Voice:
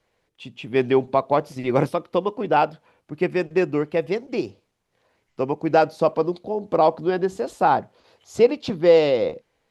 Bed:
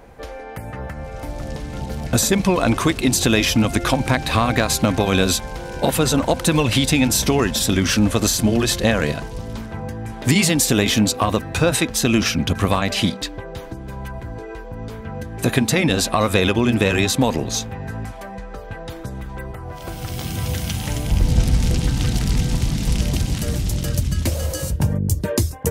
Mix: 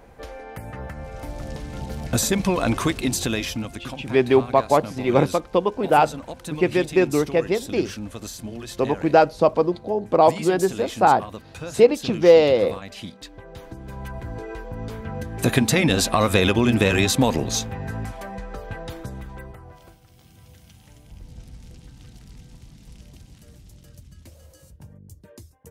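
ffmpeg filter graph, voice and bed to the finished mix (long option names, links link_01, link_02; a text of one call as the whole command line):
ffmpeg -i stem1.wav -i stem2.wav -filter_complex "[0:a]adelay=3400,volume=2dB[link_01];[1:a]volume=12dB,afade=type=out:start_time=2.86:duration=0.94:silence=0.223872,afade=type=in:start_time=13.13:duration=1.26:silence=0.158489,afade=type=out:start_time=18.73:duration=1.27:silence=0.0595662[link_02];[link_01][link_02]amix=inputs=2:normalize=0" out.wav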